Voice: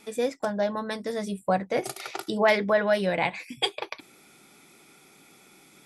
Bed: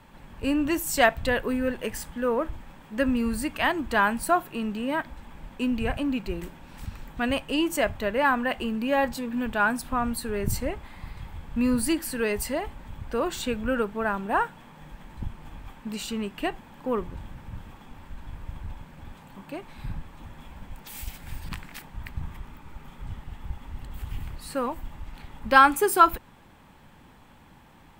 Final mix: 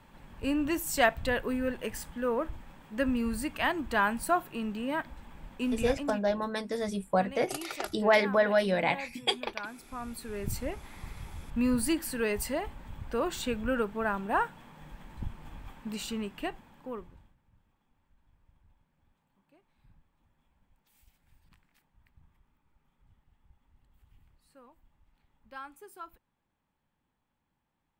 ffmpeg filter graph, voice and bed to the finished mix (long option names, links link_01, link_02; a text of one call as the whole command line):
ffmpeg -i stem1.wav -i stem2.wav -filter_complex "[0:a]adelay=5650,volume=-2dB[link_01];[1:a]volume=10dB,afade=type=out:start_time=5.81:duration=0.47:silence=0.211349,afade=type=in:start_time=9.78:duration=1.22:silence=0.188365,afade=type=out:start_time=16.06:duration=1.3:silence=0.0595662[link_02];[link_01][link_02]amix=inputs=2:normalize=0" out.wav